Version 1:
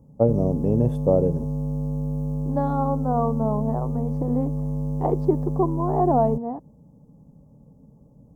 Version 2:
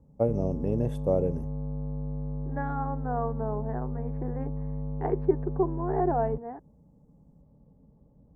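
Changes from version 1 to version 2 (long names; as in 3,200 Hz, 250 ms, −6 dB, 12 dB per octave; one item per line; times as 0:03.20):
second voice: add loudspeaker in its box 310–2,500 Hz, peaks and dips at 400 Hz +7 dB, 570 Hz −7 dB, 1,100 Hz −4 dB, 1,600 Hz +8 dB
background: add Chebyshev low-pass filter 2,100 Hz, order 10
master: add graphic EQ with 10 bands 125 Hz −7 dB, 250 Hz −6 dB, 500 Hz −4 dB, 1,000 Hz −6 dB, 2,000 Hz +6 dB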